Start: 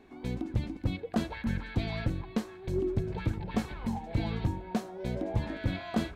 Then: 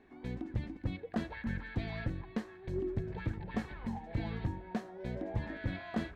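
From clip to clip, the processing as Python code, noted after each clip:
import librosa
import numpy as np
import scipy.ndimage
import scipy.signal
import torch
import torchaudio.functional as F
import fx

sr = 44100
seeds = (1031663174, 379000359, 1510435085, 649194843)

y = fx.lowpass(x, sr, hz=3500.0, slope=6)
y = fx.peak_eq(y, sr, hz=1800.0, db=8.5, octaves=0.28)
y = y * librosa.db_to_amplitude(-5.5)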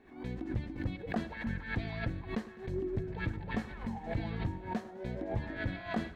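y = fx.echo_feedback(x, sr, ms=103, feedback_pct=59, wet_db=-17)
y = fx.pre_swell(y, sr, db_per_s=120.0)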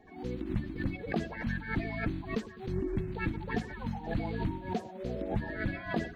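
y = fx.spec_quant(x, sr, step_db=30)
y = y * librosa.db_to_amplitude(3.0)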